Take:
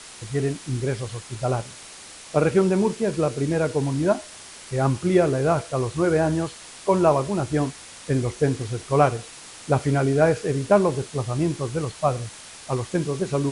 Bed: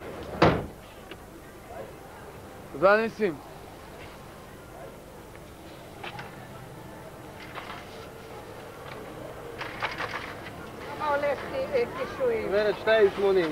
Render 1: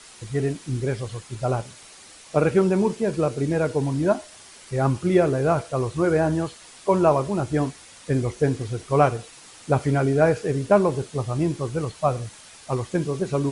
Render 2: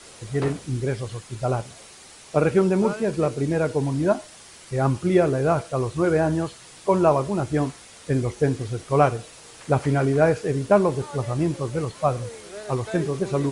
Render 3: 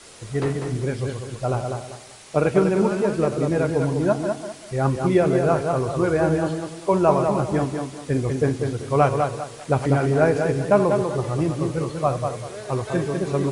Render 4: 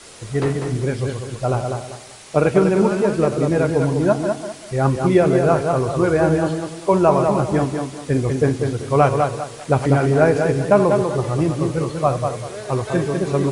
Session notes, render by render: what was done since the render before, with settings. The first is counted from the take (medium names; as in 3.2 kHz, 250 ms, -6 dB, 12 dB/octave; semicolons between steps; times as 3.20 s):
noise reduction 6 dB, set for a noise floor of -43 dBFS
add bed -13 dB
chunks repeated in reverse 110 ms, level -11 dB; on a send: tape echo 197 ms, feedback 31%, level -4 dB
trim +3.5 dB; peak limiter -3 dBFS, peak gain reduction 2 dB